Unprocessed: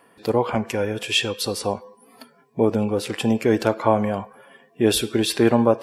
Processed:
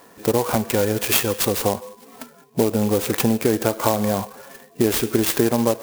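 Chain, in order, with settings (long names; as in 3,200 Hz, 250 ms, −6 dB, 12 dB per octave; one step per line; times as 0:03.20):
downward compressor 6 to 1, threshold −22 dBFS, peak gain reduction 10.5 dB
converter with an unsteady clock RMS 0.077 ms
level +7 dB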